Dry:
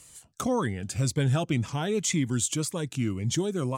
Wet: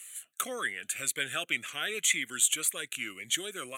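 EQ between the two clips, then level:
high-pass filter 1,100 Hz 12 dB per octave
parametric band 12,000 Hz +5 dB 0.6 octaves
phaser with its sweep stopped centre 2,200 Hz, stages 4
+8.0 dB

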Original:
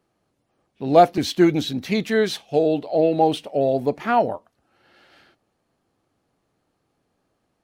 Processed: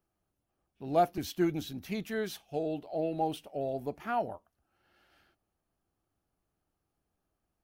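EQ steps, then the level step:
graphic EQ with 10 bands 125 Hz −10 dB, 250 Hz −10 dB, 500 Hz −12 dB, 1,000 Hz −8 dB, 2,000 Hz −10 dB, 4,000 Hz −12 dB, 8,000 Hz −9 dB
0.0 dB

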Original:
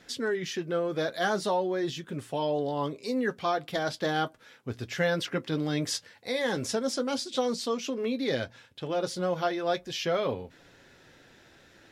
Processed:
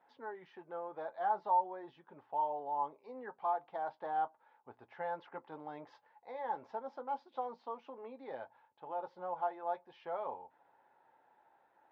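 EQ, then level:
resonant band-pass 870 Hz, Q 8.6
high-frequency loss of the air 250 metres
+5.5 dB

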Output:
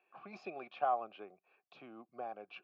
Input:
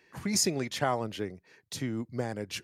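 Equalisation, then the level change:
formant filter a
loudspeaker in its box 240–3,100 Hz, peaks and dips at 280 Hz −7 dB, 470 Hz −7 dB, 660 Hz −7 dB, 1,000 Hz −5 dB, 2,000 Hz −9 dB, 3,000 Hz −5 dB
+8.0 dB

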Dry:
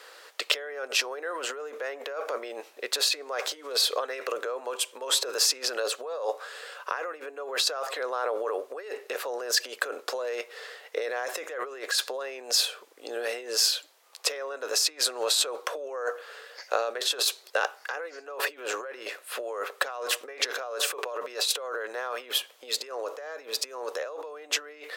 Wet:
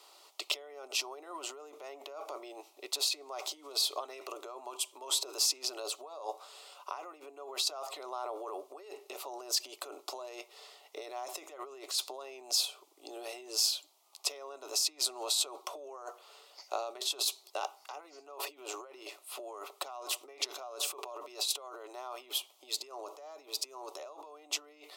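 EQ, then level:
phaser with its sweep stopped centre 330 Hz, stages 8
−4.5 dB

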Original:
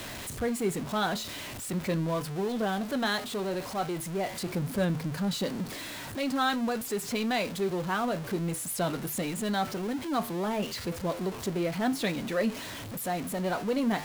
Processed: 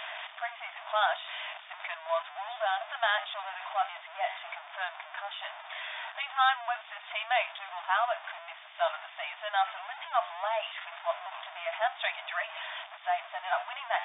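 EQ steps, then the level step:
linear-phase brick-wall high-pass 610 Hz
linear-phase brick-wall low-pass 3,700 Hz
+3.5 dB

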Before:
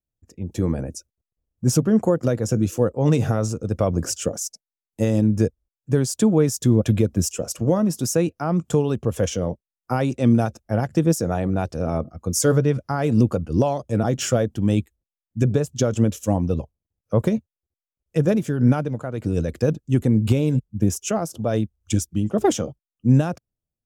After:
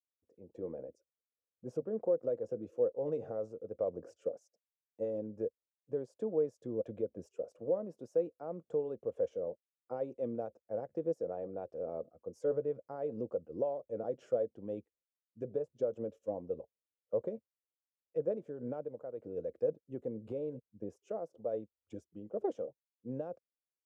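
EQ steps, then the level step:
resonant band-pass 510 Hz, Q 4
−8.0 dB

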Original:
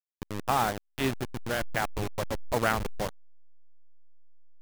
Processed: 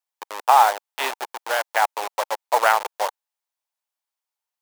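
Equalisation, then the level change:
high-pass filter 540 Hz 24 dB per octave
parametric band 890 Hz +8.5 dB 0.51 octaves
+7.5 dB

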